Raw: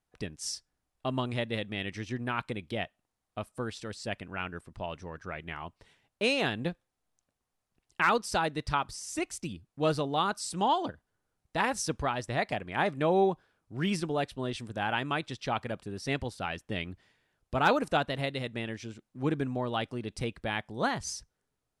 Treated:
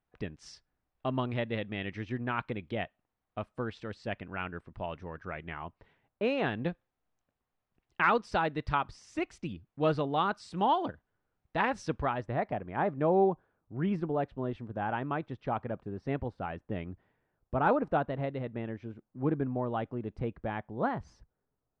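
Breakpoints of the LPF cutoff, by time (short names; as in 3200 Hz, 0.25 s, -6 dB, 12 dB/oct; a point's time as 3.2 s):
5.37 s 2500 Hz
6.25 s 1500 Hz
6.67 s 2700 Hz
11.94 s 2700 Hz
12.4 s 1200 Hz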